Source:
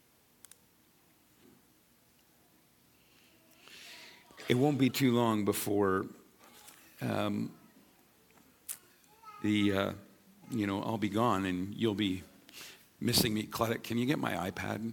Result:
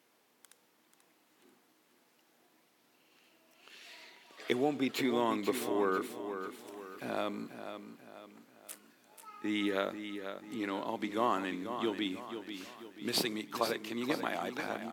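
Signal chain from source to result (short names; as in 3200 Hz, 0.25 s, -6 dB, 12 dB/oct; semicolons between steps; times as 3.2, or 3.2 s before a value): HPF 320 Hz 12 dB/oct; high shelf 5300 Hz -8 dB; on a send: feedback echo 0.488 s, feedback 42%, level -9 dB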